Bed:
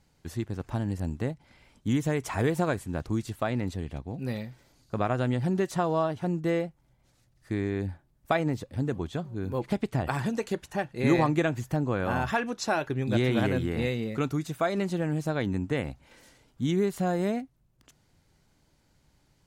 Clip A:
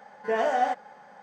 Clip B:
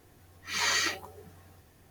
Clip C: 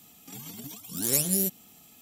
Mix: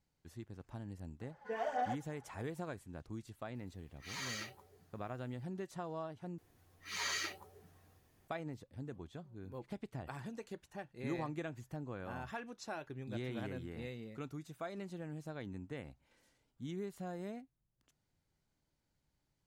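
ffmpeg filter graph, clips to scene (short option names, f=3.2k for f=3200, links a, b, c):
-filter_complex "[2:a]asplit=2[a][b];[0:a]volume=-16.5dB[c];[1:a]aphaser=in_gain=1:out_gain=1:delay=4.2:decay=0.53:speed=1.7:type=sinusoidal[d];[a]asoftclip=type=hard:threshold=-22dB[e];[c]asplit=2[f][g];[f]atrim=end=6.384[h];[b]atrim=end=1.9,asetpts=PTS-STARTPTS,volume=-10.5dB[i];[g]atrim=start=8.276[j];[d]atrim=end=1.22,asetpts=PTS-STARTPTS,volume=-15dB,afade=t=in:d=0.004:c=hsin,afade=t=out:st=1.216:d=0.004:c=hsin,adelay=1210[k];[e]atrim=end=1.9,asetpts=PTS-STARTPTS,volume=-15dB,afade=t=in:d=0.004:c=hsin,afade=t=out:st=1.896:d=0.004:c=hsin,adelay=3550[l];[h][i]acrossfade=d=0.004:c1=hsin:c2=hsin[m];[m][j]acrossfade=d=0.004:c1=hsin:c2=hsin[n];[n][k][l]amix=inputs=3:normalize=0"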